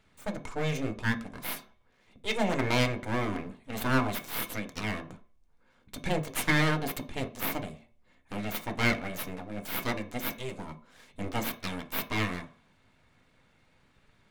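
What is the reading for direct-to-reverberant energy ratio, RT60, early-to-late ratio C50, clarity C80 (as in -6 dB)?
3.0 dB, 0.50 s, 15.0 dB, 20.0 dB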